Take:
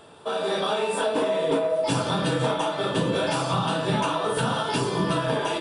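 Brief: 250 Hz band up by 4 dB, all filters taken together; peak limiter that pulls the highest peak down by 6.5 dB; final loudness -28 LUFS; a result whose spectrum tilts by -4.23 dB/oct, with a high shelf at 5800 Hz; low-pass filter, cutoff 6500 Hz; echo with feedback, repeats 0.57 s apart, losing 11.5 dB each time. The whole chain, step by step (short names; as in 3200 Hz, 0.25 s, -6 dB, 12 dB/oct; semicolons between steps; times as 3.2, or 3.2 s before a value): LPF 6500 Hz; bell 250 Hz +5.5 dB; high shelf 5800 Hz +5 dB; limiter -16 dBFS; feedback echo 0.57 s, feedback 27%, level -11.5 dB; gain -3 dB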